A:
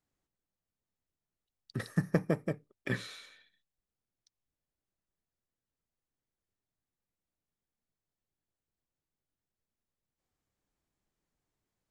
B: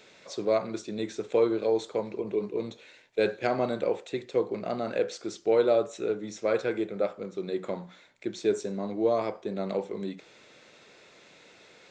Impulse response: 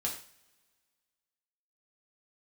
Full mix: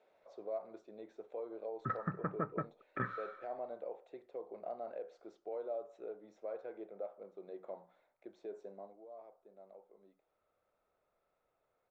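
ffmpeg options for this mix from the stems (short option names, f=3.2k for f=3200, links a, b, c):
-filter_complex "[0:a]alimiter=limit=-21dB:level=0:latency=1:release=114,lowpass=f=1.3k:t=q:w=14,adelay=100,volume=-5.5dB[a];[1:a]alimiter=limit=-21dB:level=0:latency=1:release=165,bandpass=f=680:t=q:w=2.4:csg=0,volume=-7dB,afade=t=out:st=8.67:d=0.32:silence=0.237137[b];[a][b]amix=inputs=2:normalize=0"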